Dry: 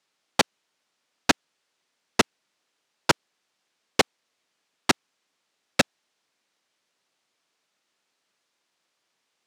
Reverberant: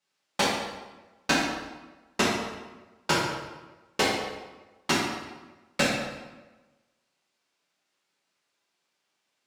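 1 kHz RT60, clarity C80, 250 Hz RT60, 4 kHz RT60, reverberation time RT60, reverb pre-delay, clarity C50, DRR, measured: 1.2 s, 3.0 dB, 1.2 s, 0.90 s, 1.2 s, 3 ms, 0.0 dB, −8.0 dB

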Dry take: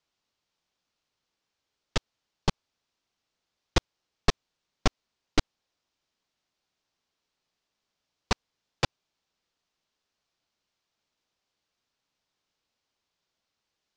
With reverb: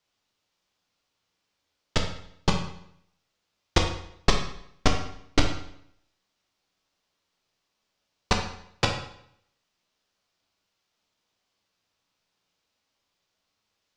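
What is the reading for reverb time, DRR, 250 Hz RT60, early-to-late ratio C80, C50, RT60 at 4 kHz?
0.70 s, 1.5 dB, 0.75 s, 9.0 dB, 6.5 dB, 0.65 s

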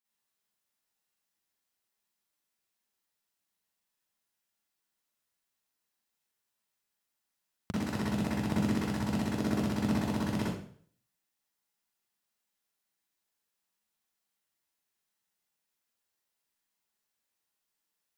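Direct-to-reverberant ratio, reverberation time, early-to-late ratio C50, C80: −8.5 dB, 0.55 s, −1.0 dB, 5.0 dB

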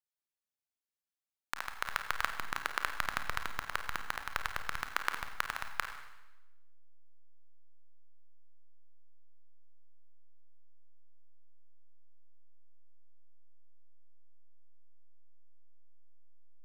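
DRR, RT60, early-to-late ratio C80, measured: 6.0 dB, 1.0 s, 10.0 dB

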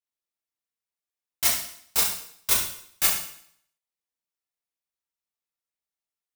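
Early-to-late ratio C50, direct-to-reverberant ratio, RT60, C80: 1.5 dB, −10.5 dB, 0.65 s, 6.0 dB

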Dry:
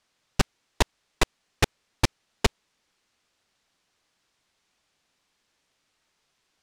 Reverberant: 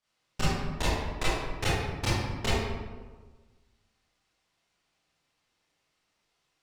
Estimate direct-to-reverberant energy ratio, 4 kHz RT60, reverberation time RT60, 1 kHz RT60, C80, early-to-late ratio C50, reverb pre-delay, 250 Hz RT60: −11.5 dB, 0.80 s, 1.4 s, 1.3 s, 0.5 dB, −3.0 dB, 23 ms, 1.5 s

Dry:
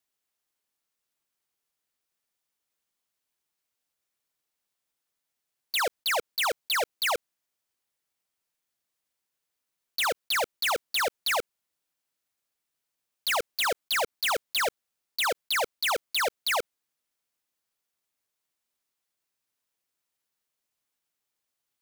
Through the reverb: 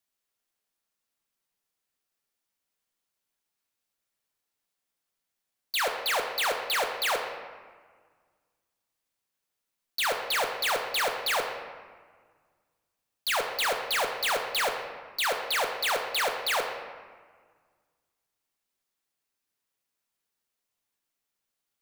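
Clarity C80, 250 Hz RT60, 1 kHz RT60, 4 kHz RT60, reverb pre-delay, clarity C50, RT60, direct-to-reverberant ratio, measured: 7.0 dB, 2.1 s, 1.6 s, 0.95 s, 4 ms, 5.5 dB, 1.6 s, 3.0 dB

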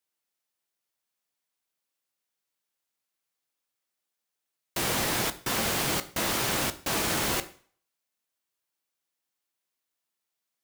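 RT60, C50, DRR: 0.50 s, 16.5 dB, 11.0 dB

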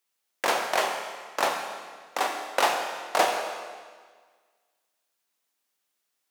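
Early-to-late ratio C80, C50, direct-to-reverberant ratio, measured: 5.5 dB, 4.5 dB, 3.0 dB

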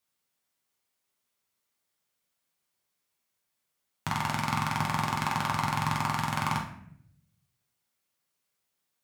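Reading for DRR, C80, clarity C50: −1.0 dB, 11.0 dB, 6.5 dB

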